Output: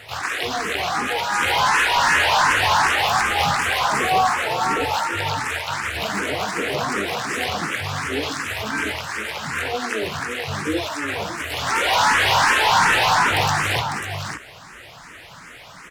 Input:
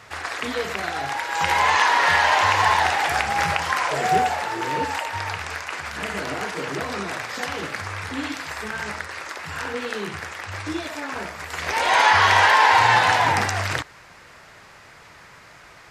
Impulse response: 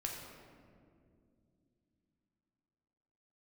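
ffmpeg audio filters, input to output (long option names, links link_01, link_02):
-filter_complex "[0:a]asplit=2[link_01][link_02];[link_02]asetrate=66075,aresample=44100,atempo=0.66742,volume=-4dB[link_03];[link_01][link_03]amix=inputs=2:normalize=0,asoftclip=type=tanh:threshold=-17.5dB,asplit=2[link_04][link_05];[link_05]aecho=0:1:550:0.447[link_06];[link_04][link_06]amix=inputs=2:normalize=0,asplit=2[link_07][link_08];[link_08]afreqshift=2.7[link_09];[link_07][link_09]amix=inputs=2:normalize=1,volume=6dB"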